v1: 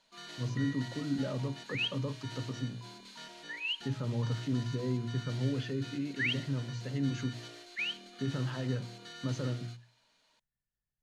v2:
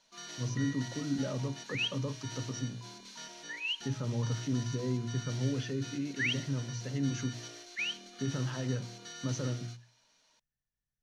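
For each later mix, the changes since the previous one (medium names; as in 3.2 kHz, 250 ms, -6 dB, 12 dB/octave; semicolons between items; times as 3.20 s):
master: add peaking EQ 5.8 kHz +13.5 dB 0.21 oct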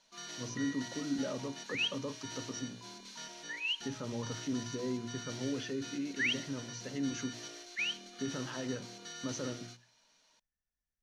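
speech: add peaking EQ 130 Hz -13 dB 0.68 oct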